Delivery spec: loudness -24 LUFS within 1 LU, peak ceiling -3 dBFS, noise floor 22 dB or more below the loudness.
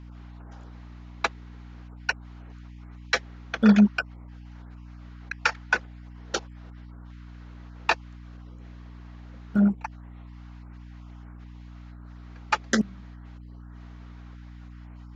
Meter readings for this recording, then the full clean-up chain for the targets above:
hum 60 Hz; harmonics up to 300 Hz; hum level -41 dBFS; loudness -26.0 LUFS; peak -6.5 dBFS; loudness target -24.0 LUFS
-> notches 60/120/180/240/300 Hz; gain +2 dB

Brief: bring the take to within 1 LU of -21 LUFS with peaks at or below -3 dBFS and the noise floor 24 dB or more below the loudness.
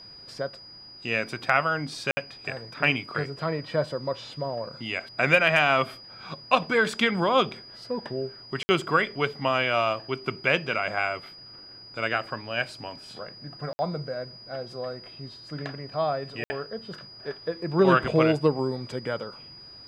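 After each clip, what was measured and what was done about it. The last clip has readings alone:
dropouts 4; longest dropout 60 ms; steady tone 4900 Hz; tone level -44 dBFS; loudness -26.5 LUFS; peak -6.0 dBFS; loudness target -21.0 LUFS
-> interpolate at 2.11/8.63/13.73/16.44, 60 ms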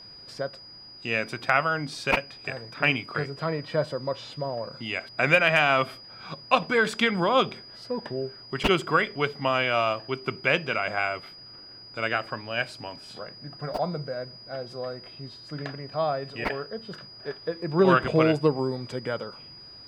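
dropouts 0; steady tone 4900 Hz; tone level -44 dBFS
-> notch 4900 Hz, Q 30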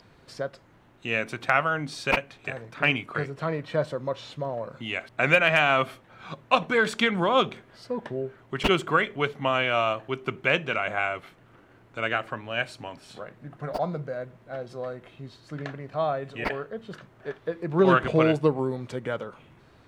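steady tone none; loudness -26.5 LUFS; peak -6.0 dBFS; loudness target -21.0 LUFS
-> gain +5.5 dB; limiter -3 dBFS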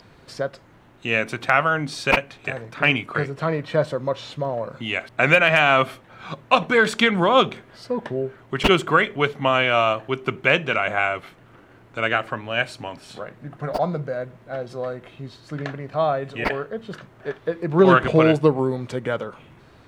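loudness -21.0 LUFS; peak -3.0 dBFS; noise floor -51 dBFS

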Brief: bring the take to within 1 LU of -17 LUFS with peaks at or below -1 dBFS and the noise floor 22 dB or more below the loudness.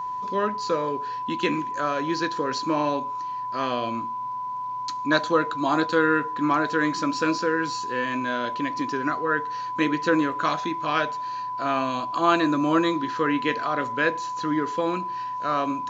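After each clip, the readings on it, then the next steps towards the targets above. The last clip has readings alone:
ticks 27/s; steady tone 1000 Hz; tone level -28 dBFS; loudness -25.0 LUFS; peak -6.5 dBFS; loudness target -17.0 LUFS
-> de-click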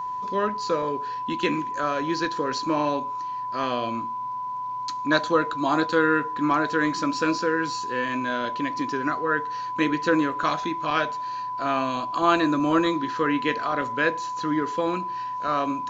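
ticks 0.063/s; steady tone 1000 Hz; tone level -28 dBFS
-> notch 1000 Hz, Q 30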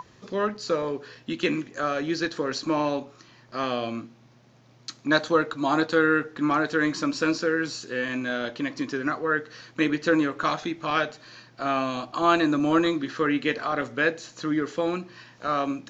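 steady tone none; loudness -26.0 LUFS; peak -7.5 dBFS; loudness target -17.0 LUFS
-> gain +9 dB; limiter -1 dBFS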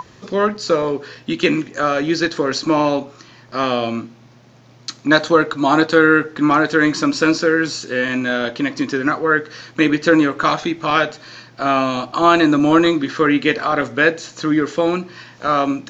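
loudness -17.0 LUFS; peak -1.0 dBFS; noise floor -47 dBFS

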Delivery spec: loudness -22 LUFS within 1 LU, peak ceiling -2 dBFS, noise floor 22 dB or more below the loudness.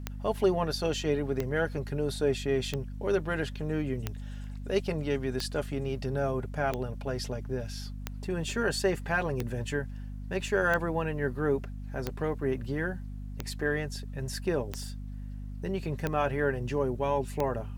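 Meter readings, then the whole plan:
clicks 14; hum 50 Hz; harmonics up to 250 Hz; hum level -36 dBFS; loudness -31.5 LUFS; peak -13.5 dBFS; loudness target -22.0 LUFS
-> de-click; notches 50/100/150/200/250 Hz; gain +9.5 dB

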